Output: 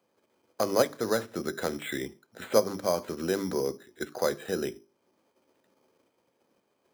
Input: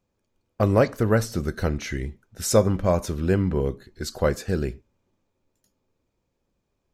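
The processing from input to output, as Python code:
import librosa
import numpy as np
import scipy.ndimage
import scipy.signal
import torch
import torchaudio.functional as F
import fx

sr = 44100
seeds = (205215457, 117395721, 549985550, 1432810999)

p1 = fx.high_shelf(x, sr, hz=6500.0, db=7.5)
p2 = fx.hum_notches(p1, sr, base_hz=50, count=8)
p3 = fx.level_steps(p2, sr, step_db=15)
p4 = p2 + F.gain(torch.from_numpy(p3), 1.5).numpy()
p5 = np.repeat(scipy.signal.resample_poly(p4, 1, 8), 8)[:len(p4)]
p6 = scipy.signal.sosfilt(scipy.signal.butter(2, 290.0, 'highpass', fs=sr, output='sos'), p5)
p7 = fx.band_squash(p6, sr, depth_pct=40)
y = F.gain(torch.from_numpy(p7), -6.5).numpy()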